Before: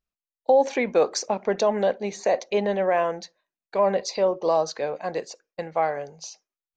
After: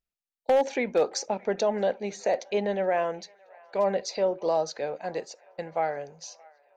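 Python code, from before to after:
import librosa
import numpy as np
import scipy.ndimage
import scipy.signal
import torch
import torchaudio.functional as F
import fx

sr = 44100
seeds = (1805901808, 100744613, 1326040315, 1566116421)

p1 = fx.notch(x, sr, hz=1100.0, q=6.4)
p2 = 10.0 ** (-11.5 / 20.0) * (np.abs((p1 / 10.0 ** (-11.5 / 20.0) + 3.0) % 4.0 - 2.0) - 1.0)
p3 = p2 + fx.echo_wet_bandpass(p2, sr, ms=621, feedback_pct=65, hz=1400.0, wet_db=-23.5, dry=0)
y = F.gain(torch.from_numpy(p3), -3.5).numpy()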